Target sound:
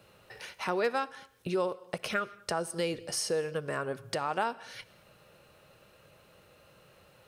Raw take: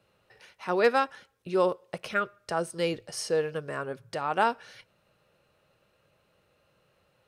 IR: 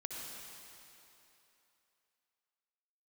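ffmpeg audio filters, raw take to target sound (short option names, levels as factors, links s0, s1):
-filter_complex "[0:a]highshelf=f=7600:g=5.5,acompressor=threshold=0.00708:ratio=2.5,asplit=2[s0][s1];[1:a]atrim=start_sample=2205,afade=t=out:st=0.29:d=0.01,atrim=end_sample=13230[s2];[s1][s2]afir=irnorm=-1:irlink=0,volume=0.2[s3];[s0][s3]amix=inputs=2:normalize=0,volume=2.37"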